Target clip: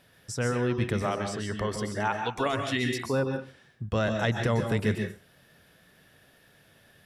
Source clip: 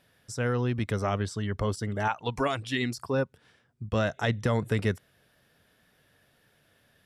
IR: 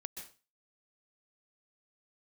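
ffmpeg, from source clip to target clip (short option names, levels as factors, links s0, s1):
-filter_complex "[0:a]asettb=1/sr,asplit=3[s0][s1][s2];[s0]atrim=end=1.024[s3];[s1]atrim=start=1.02:end=2.46,asetpts=PTS-STARTPTS,afade=t=in:d=0.004:c=qsin,afade=t=out:st=1.436:d=0.004:c=qsin,lowshelf=f=170:g=-9.5[s4];[s2]atrim=start=2.456[s5];[s3][s4]acrossfade=d=0.004:c1=hsin:c2=qsin[s6];[s6][s5]acrossfade=d=0.004:c1=qsin:c2=hsin,asplit=2[s7][s8];[s8]acompressor=threshold=0.00891:ratio=6,volume=1[s9];[s7][s9]amix=inputs=2:normalize=0[s10];[1:a]atrim=start_sample=2205[s11];[s10][s11]afir=irnorm=-1:irlink=0,volume=1.41"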